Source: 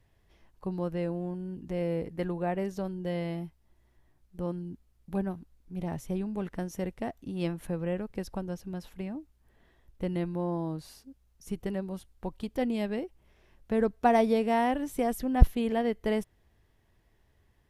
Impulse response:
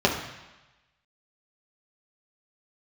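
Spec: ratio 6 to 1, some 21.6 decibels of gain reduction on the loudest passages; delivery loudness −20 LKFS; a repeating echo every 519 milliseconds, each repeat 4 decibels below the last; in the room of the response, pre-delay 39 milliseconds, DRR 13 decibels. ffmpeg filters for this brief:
-filter_complex "[0:a]acompressor=threshold=-34dB:ratio=6,aecho=1:1:519|1038|1557|2076|2595|3114|3633|4152|4671:0.631|0.398|0.25|0.158|0.0994|0.0626|0.0394|0.0249|0.0157,asplit=2[link_01][link_02];[1:a]atrim=start_sample=2205,adelay=39[link_03];[link_02][link_03]afir=irnorm=-1:irlink=0,volume=-30dB[link_04];[link_01][link_04]amix=inputs=2:normalize=0,volume=18dB"

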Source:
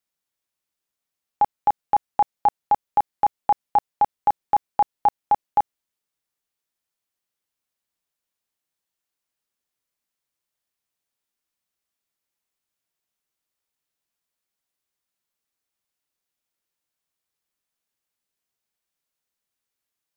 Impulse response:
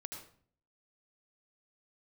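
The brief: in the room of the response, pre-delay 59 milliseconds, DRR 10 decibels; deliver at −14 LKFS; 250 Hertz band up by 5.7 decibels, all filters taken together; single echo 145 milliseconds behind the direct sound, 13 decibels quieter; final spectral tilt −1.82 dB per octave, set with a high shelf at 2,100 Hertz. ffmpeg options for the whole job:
-filter_complex "[0:a]equalizer=frequency=250:width_type=o:gain=7.5,highshelf=frequency=2100:gain=-7.5,aecho=1:1:145:0.224,asplit=2[link_01][link_02];[1:a]atrim=start_sample=2205,adelay=59[link_03];[link_02][link_03]afir=irnorm=-1:irlink=0,volume=-7dB[link_04];[link_01][link_04]amix=inputs=2:normalize=0,volume=9.5dB"

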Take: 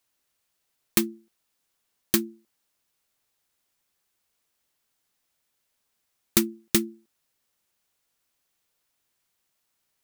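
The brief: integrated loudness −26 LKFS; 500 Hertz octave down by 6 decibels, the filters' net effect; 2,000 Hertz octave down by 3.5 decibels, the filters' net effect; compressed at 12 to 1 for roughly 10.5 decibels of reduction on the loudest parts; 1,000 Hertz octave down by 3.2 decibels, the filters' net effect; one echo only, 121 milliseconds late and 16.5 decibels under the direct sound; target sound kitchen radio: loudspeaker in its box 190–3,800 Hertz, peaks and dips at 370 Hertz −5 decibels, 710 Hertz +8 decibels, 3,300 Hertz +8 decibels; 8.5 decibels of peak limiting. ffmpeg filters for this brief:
ffmpeg -i in.wav -af "equalizer=frequency=500:width_type=o:gain=-4.5,equalizer=frequency=1000:width_type=o:gain=-3,equalizer=frequency=2000:width_type=o:gain=-4.5,acompressor=threshold=-27dB:ratio=12,alimiter=limit=-15dB:level=0:latency=1,highpass=190,equalizer=frequency=370:width_type=q:width=4:gain=-5,equalizer=frequency=710:width_type=q:width=4:gain=8,equalizer=frequency=3300:width_type=q:width=4:gain=8,lowpass=frequency=3800:width=0.5412,lowpass=frequency=3800:width=1.3066,aecho=1:1:121:0.15,volume=21dB" out.wav

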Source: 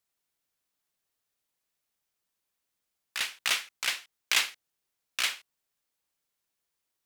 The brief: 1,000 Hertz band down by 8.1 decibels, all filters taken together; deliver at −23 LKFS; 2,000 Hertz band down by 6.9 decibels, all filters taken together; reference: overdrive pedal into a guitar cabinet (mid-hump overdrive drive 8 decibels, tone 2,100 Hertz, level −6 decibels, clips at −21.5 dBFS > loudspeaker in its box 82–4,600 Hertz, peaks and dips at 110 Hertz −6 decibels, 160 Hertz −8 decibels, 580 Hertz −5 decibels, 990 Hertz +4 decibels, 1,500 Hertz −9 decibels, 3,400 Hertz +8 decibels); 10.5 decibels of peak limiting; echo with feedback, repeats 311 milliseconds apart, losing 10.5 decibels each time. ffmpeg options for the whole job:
ffmpeg -i in.wav -filter_complex "[0:a]equalizer=frequency=1000:width_type=o:gain=-7,equalizer=frequency=2000:width_type=o:gain=-7.5,alimiter=limit=-22.5dB:level=0:latency=1,aecho=1:1:311|622|933:0.299|0.0896|0.0269,asplit=2[link_01][link_02];[link_02]highpass=frequency=720:poles=1,volume=8dB,asoftclip=type=tanh:threshold=-21.5dB[link_03];[link_01][link_03]amix=inputs=2:normalize=0,lowpass=frequency=2100:poles=1,volume=-6dB,highpass=82,equalizer=frequency=110:width_type=q:width=4:gain=-6,equalizer=frequency=160:width_type=q:width=4:gain=-8,equalizer=frequency=580:width_type=q:width=4:gain=-5,equalizer=frequency=990:width_type=q:width=4:gain=4,equalizer=frequency=1500:width_type=q:width=4:gain=-9,equalizer=frequency=3400:width_type=q:width=4:gain=8,lowpass=frequency=4600:width=0.5412,lowpass=frequency=4600:width=1.3066,volume=15.5dB" out.wav

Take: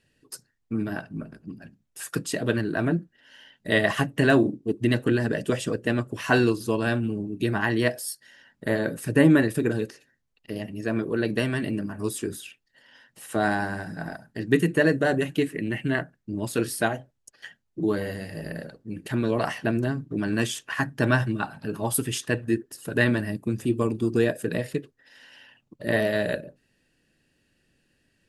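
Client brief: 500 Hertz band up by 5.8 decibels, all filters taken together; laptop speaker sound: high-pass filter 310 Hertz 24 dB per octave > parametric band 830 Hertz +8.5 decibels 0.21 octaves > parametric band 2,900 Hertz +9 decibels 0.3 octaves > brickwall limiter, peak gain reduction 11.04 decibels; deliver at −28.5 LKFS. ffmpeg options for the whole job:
ffmpeg -i in.wav -af "highpass=frequency=310:width=0.5412,highpass=frequency=310:width=1.3066,equalizer=frequency=500:width_type=o:gain=7.5,equalizer=frequency=830:width_type=o:width=0.21:gain=8.5,equalizer=frequency=2900:width_type=o:width=0.3:gain=9,volume=-2dB,alimiter=limit=-15.5dB:level=0:latency=1" out.wav

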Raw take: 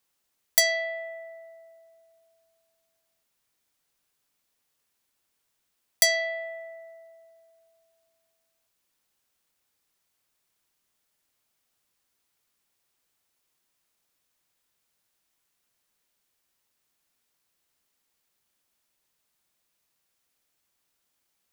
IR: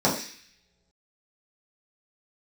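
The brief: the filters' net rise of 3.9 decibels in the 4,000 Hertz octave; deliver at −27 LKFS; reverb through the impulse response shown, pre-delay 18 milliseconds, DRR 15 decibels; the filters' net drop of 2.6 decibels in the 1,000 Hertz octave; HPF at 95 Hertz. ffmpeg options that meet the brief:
-filter_complex "[0:a]highpass=95,equalizer=frequency=1000:width_type=o:gain=-6.5,equalizer=frequency=4000:width_type=o:gain=5,asplit=2[link_01][link_02];[1:a]atrim=start_sample=2205,adelay=18[link_03];[link_02][link_03]afir=irnorm=-1:irlink=0,volume=-31dB[link_04];[link_01][link_04]amix=inputs=2:normalize=0,volume=-3.5dB"

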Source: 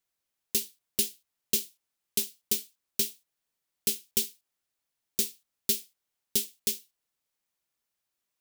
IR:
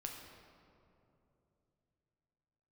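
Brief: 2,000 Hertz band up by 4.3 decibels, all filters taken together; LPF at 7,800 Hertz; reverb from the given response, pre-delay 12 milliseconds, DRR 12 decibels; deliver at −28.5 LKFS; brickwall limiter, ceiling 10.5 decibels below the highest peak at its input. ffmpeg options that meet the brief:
-filter_complex "[0:a]lowpass=7800,equalizer=frequency=2000:width_type=o:gain=6,alimiter=level_in=0.5dB:limit=-24dB:level=0:latency=1,volume=-0.5dB,asplit=2[link_01][link_02];[1:a]atrim=start_sample=2205,adelay=12[link_03];[link_02][link_03]afir=irnorm=-1:irlink=0,volume=-10dB[link_04];[link_01][link_04]amix=inputs=2:normalize=0,volume=12dB"

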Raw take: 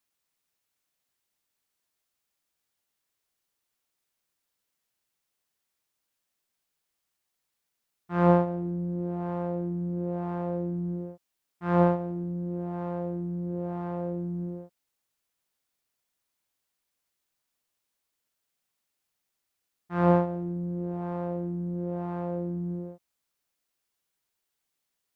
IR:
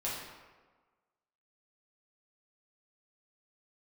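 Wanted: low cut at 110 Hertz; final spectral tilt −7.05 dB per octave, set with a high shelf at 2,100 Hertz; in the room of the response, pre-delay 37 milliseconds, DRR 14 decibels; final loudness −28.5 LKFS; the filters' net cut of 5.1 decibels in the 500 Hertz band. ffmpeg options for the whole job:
-filter_complex "[0:a]highpass=110,equalizer=frequency=500:width_type=o:gain=-6,highshelf=frequency=2100:gain=-7.5,asplit=2[link_01][link_02];[1:a]atrim=start_sample=2205,adelay=37[link_03];[link_02][link_03]afir=irnorm=-1:irlink=0,volume=-18dB[link_04];[link_01][link_04]amix=inputs=2:normalize=0,volume=4.5dB"

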